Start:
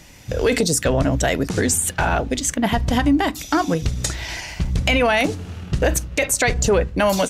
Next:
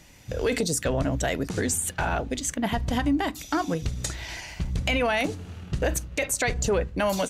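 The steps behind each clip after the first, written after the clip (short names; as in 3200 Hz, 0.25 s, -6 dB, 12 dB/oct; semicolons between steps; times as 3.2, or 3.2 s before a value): notch 5300 Hz, Q 23; gain -7 dB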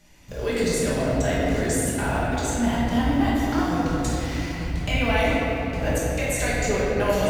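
in parallel at -10 dB: requantised 6-bit, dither none; on the sum: shoebox room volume 220 m³, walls hard, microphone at 1.3 m; gain -8.5 dB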